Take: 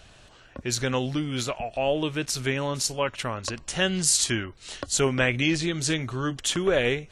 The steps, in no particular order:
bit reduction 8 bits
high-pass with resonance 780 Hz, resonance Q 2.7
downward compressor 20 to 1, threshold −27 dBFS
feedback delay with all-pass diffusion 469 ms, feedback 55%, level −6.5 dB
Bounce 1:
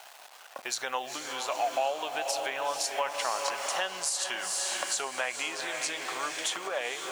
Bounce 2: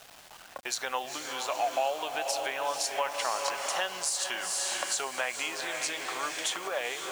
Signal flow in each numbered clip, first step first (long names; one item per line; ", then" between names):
feedback delay with all-pass diffusion, then bit reduction, then downward compressor, then high-pass with resonance
feedback delay with all-pass diffusion, then downward compressor, then high-pass with resonance, then bit reduction